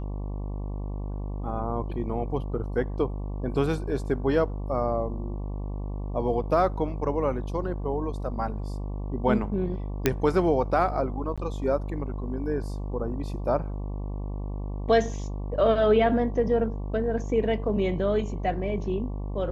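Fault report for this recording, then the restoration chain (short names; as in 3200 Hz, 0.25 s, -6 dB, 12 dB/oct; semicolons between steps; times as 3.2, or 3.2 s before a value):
buzz 50 Hz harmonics 23 -32 dBFS
10.06 pop -6 dBFS
11.36–11.38 gap 16 ms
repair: de-click; de-hum 50 Hz, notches 23; interpolate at 11.36, 16 ms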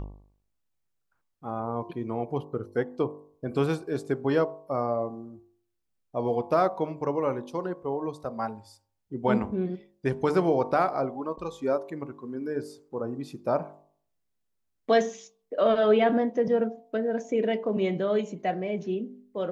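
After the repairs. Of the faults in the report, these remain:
none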